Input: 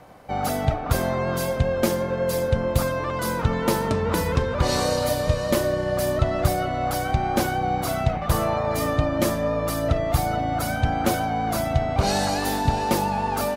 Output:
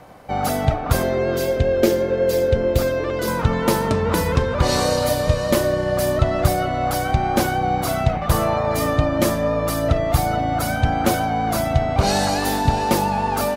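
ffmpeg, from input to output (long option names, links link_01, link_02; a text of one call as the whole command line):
ffmpeg -i in.wav -filter_complex "[0:a]asettb=1/sr,asplit=3[link_01][link_02][link_03];[link_01]atrim=end=1.034[link_04];[link_02]atrim=start=1.03:end=3.28,asetpts=PTS-STARTPTS,afade=type=in:duration=0.004:curve=qsin,afade=type=out:start_time=2.246:duration=0.004:curve=qsin,equalizer=frequency=160:width_type=o:width=0.67:gain=-8,equalizer=frequency=400:width_type=o:width=0.67:gain=9,equalizer=frequency=1000:width_type=o:width=0.67:gain=-10,equalizer=frequency=10000:width_type=o:width=0.67:gain=-7[link_05];[link_03]atrim=start=3.276[link_06];[link_04][link_05]acrossfade=duration=0.004:curve1=hsin:curve2=qsin[link_07];[link_07][link_06]acrossfade=duration=0.004:curve1=qsin:curve2=hsin,volume=3.5dB" out.wav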